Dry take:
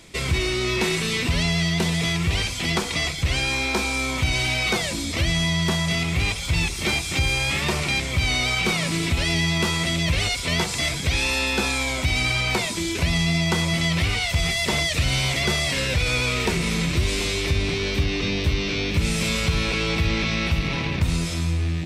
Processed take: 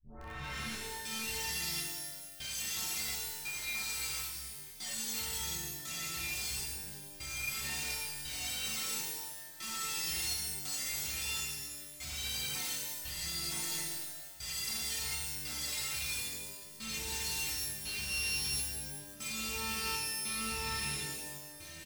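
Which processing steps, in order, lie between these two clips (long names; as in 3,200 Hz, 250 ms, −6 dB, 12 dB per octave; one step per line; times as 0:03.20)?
turntable start at the beginning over 1.06 s
high-shelf EQ 5,600 Hz +11.5 dB
stiff-string resonator 66 Hz, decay 0.62 s, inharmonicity 0.03
on a send: ambience of single reflections 40 ms −9 dB, 55 ms −12 dB
on the sum: brickwall limiter −25.5 dBFS, peak gain reduction 8.5 dB
guitar amp tone stack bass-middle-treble 5-5-5
in parallel at −6.5 dB: wrap-around overflow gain 40.5 dB
on the sum: gate pattern "xxxxx..xxxxx...." 100 BPM −24 dB
reverb with rising layers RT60 1.3 s, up +12 semitones, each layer −2 dB, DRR −1.5 dB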